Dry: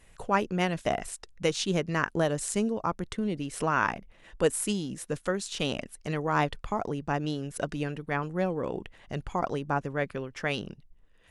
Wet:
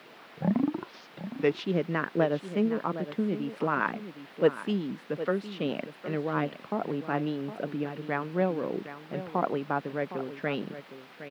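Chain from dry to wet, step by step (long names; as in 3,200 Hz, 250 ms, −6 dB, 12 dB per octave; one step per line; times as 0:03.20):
turntable start at the beginning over 1.62 s
rotating-speaker cabinet horn 8 Hz, later 0.8 Hz, at 0:04.93
in parallel at −5.5 dB: bit-depth reduction 6 bits, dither triangular
on the sum: high-pass filter 170 Hz 24 dB per octave
high-frequency loss of the air 390 metres
single-tap delay 762 ms −12.5 dB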